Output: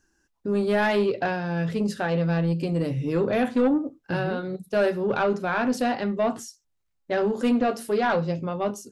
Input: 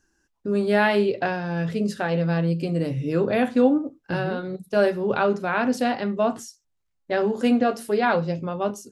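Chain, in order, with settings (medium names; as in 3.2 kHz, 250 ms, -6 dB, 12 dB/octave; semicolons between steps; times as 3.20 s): saturation -14.5 dBFS, distortion -16 dB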